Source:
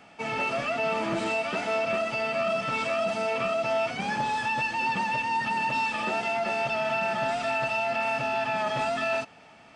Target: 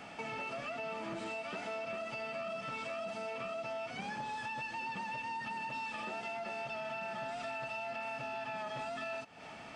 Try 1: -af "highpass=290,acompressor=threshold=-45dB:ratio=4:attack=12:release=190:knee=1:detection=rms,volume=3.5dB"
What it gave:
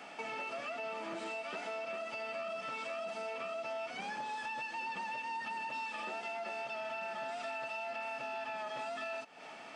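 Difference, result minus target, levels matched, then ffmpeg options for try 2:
250 Hz band -4.5 dB
-af "acompressor=threshold=-45dB:ratio=4:attack=12:release=190:knee=1:detection=rms,volume=3.5dB"

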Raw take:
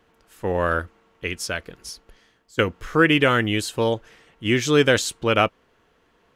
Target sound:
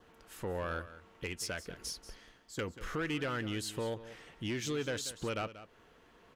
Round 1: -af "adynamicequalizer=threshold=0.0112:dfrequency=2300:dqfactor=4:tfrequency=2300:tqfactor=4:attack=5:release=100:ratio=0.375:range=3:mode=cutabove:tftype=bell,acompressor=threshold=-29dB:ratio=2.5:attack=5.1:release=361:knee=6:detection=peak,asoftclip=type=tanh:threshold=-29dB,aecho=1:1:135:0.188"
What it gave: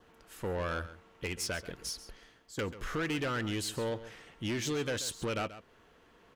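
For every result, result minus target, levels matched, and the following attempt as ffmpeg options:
echo 51 ms early; compressor: peak gain reduction -4.5 dB
-af "adynamicequalizer=threshold=0.0112:dfrequency=2300:dqfactor=4:tfrequency=2300:tqfactor=4:attack=5:release=100:ratio=0.375:range=3:mode=cutabove:tftype=bell,acompressor=threshold=-29dB:ratio=2.5:attack=5.1:release=361:knee=6:detection=peak,asoftclip=type=tanh:threshold=-29dB,aecho=1:1:186:0.188"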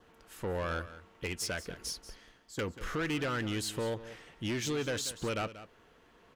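compressor: peak gain reduction -4.5 dB
-af "adynamicequalizer=threshold=0.0112:dfrequency=2300:dqfactor=4:tfrequency=2300:tqfactor=4:attack=5:release=100:ratio=0.375:range=3:mode=cutabove:tftype=bell,acompressor=threshold=-36.5dB:ratio=2.5:attack=5.1:release=361:knee=6:detection=peak,asoftclip=type=tanh:threshold=-29dB,aecho=1:1:186:0.188"

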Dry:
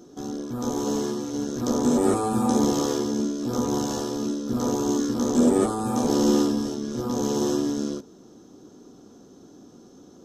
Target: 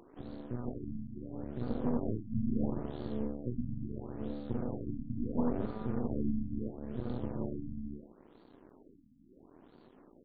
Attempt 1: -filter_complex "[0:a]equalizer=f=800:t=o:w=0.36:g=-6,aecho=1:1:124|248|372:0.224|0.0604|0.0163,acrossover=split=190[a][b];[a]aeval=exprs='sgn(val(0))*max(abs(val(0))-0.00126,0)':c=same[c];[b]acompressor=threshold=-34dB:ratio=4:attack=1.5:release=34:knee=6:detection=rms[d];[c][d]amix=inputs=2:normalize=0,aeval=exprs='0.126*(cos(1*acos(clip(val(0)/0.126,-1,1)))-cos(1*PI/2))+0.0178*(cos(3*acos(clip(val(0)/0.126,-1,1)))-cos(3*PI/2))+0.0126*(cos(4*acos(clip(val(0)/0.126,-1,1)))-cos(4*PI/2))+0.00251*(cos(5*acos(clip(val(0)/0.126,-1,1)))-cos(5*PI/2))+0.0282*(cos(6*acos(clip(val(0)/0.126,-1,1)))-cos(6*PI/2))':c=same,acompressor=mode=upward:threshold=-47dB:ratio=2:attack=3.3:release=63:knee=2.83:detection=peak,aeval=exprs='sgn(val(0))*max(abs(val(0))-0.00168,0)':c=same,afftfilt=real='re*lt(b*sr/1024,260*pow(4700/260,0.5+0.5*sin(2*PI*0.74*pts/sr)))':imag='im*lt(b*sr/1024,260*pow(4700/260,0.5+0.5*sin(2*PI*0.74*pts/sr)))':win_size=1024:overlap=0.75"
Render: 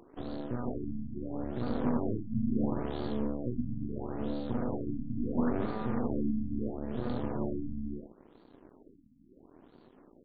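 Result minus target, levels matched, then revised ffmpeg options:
compressor: peak gain reduction -7.5 dB
-filter_complex "[0:a]equalizer=f=800:t=o:w=0.36:g=-6,aecho=1:1:124|248|372:0.224|0.0604|0.0163,acrossover=split=190[a][b];[a]aeval=exprs='sgn(val(0))*max(abs(val(0))-0.00126,0)':c=same[c];[b]acompressor=threshold=-44dB:ratio=4:attack=1.5:release=34:knee=6:detection=rms[d];[c][d]amix=inputs=2:normalize=0,aeval=exprs='0.126*(cos(1*acos(clip(val(0)/0.126,-1,1)))-cos(1*PI/2))+0.0178*(cos(3*acos(clip(val(0)/0.126,-1,1)))-cos(3*PI/2))+0.0126*(cos(4*acos(clip(val(0)/0.126,-1,1)))-cos(4*PI/2))+0.00251*(cos(5*acos(clip(val(0)/0.126,-1,1)))-cos(5*PI/2))+0.0282*(cos(6*acos(clip(val(0)/0.126,-1,1)))-cos(6*PI/2))':c=same,acompressor=mode=upward:threshold=-47dB:ratio=2:attack=3.3:release=63:knee=2.83:detection=peak,aeval=exprs='sgn(val(0))*max(abs(val(0))-0.00168,0)':c=same,afftfilt=real='re*lt(b*sr/1024,260*pow(4700/260,0.5+0.5*sin(2*PI*0.74*pts/sr)))':imag='im*lt(b*sr/1024,260*pow(4700/260,0.5+0.5*sin(2*PI*0.74*pts/sr)))':win_size=1024:overlap=0.75"

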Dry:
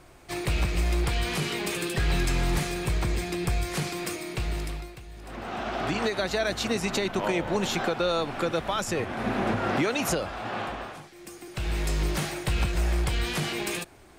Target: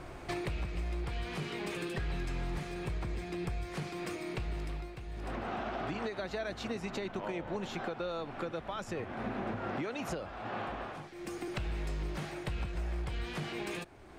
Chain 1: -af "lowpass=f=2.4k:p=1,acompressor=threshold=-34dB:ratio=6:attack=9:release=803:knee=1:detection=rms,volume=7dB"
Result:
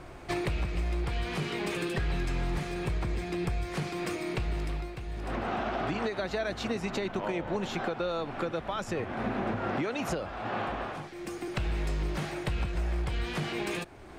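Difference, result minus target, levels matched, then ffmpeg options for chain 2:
compressor: peak gain reduction -5.5 dB
-af "lowpass=f=2.4k:p=1,acompressor=threshold=-40.5dB:ratio=6:attack=9:release=803:knee=1:detection=rms,volume=7dB"

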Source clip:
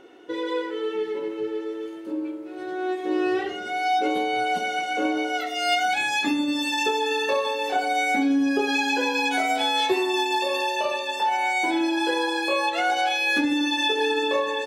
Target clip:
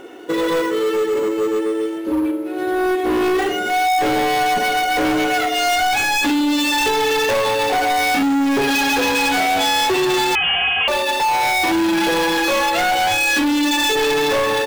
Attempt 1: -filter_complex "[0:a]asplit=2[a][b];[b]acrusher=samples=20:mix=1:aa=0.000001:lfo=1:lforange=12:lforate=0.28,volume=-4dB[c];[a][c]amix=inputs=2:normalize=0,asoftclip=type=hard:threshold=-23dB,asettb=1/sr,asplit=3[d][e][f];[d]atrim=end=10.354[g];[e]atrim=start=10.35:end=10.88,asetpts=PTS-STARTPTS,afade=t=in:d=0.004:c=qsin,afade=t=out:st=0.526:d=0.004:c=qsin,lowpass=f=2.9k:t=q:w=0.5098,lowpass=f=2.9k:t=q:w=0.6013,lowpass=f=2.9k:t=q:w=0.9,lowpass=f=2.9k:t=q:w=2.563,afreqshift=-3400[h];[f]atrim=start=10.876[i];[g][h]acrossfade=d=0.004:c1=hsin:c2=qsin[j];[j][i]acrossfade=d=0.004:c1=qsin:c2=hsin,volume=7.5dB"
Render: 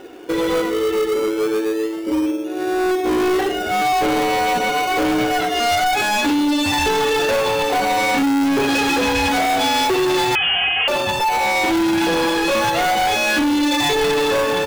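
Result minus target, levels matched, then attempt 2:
decimation with a swept rate: distortion +12 dB
-filter_complex "[0:a]asplit=2[a][b];[b]acrusher=samples=5:mix=1:aa=0.000001:lfo=1:lforange=3:lforate=0.28,volume=-4dB[c];[a][c]amix=inputs=2:normalize=0,asoftclip=type=hard:threshold=-23dB,asettb=1/sr,asplit=3[d][e][f];[d]atrim=end=10.354[g];[e]atrim=start=10.35:end=10.88,asetpts=PTS-STARTPTS,afade=t=in:d=0.004:c=qsin,afade=t=out:st=0.526:d=0.004:c=qsin,lowpass=f=2.9k:t=q:w=0.5098,lowpass=f=2.9k:t=q:w=0.6013,lowpass=f=2.9k:t=q:w=0.9,lowpass=f=2.9k:t=q:w=2.563,afreqshift=-3400[h];[f]atrim=start=10.876[i];[g][h]acrossfade=d=0.004:c1=hsin:c2=qsin[j];[j][i]acrossfade=d=0.004:c1=qsin:c2=hsin,volume=7.5dB"

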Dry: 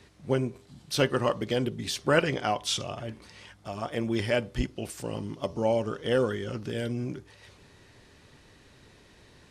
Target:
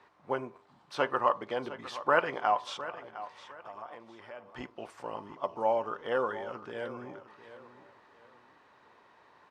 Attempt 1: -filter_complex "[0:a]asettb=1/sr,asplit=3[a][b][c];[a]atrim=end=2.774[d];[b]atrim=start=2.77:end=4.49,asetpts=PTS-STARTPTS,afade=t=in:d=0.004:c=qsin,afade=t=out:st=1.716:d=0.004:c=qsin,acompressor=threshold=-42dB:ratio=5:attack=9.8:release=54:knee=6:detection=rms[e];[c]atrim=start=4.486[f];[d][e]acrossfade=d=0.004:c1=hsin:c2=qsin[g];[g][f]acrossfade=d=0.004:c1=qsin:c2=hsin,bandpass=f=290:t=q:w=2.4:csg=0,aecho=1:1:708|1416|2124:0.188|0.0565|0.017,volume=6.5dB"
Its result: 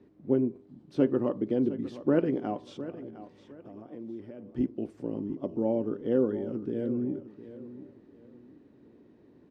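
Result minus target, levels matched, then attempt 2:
1000 Hz band -15.5 dB
-filter_complex "[0:a]asettb=1/sr,asplit=3[a][b][c];[a]atrim=end=2.774[d];[b]atrim=start=2.77:end=4.49,asetpts=PTS-STARTPTS,afade=t=in:d=0.004:c=qsin,afade=t=out:st=1.716:d=0.004:c=qsin,acompressor=threshold=-42dB:ratio=5:attack=9.8:release=54:knee=6:detection=rms[e];[c]atrim=start=4.486[f];[d][e]acrossfade=d=0.004:c1=hsin:c2=qsin[g];[g][f]acrossfade=d=0.004:c1=qsin:c2=hsin,bandpass=f=1k:t=q:w=2.4:csg=0,aecho=1:1:708|1416|2124:0.188|0.0565|0.017,volume=6.5dB"

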